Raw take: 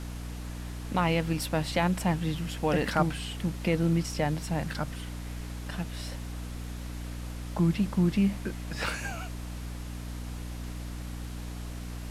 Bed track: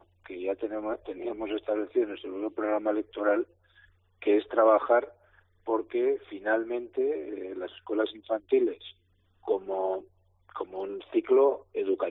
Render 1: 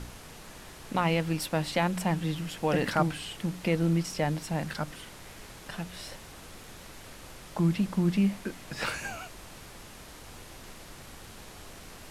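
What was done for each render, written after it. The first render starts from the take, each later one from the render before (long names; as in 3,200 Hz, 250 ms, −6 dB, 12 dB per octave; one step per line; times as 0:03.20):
hum removal 60 Hz, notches 5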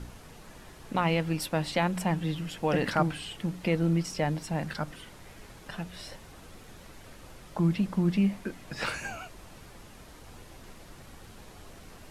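broadband denoise 6 dB, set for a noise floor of −48 dBFS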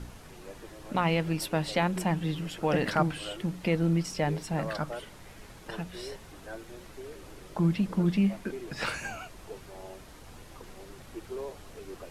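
mix in bed track −16.5 dB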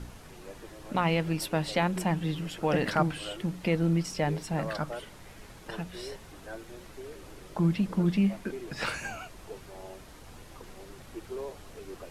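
no processing that can be heard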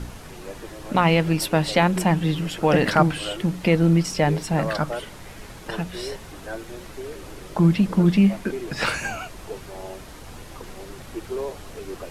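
level +8.5 dB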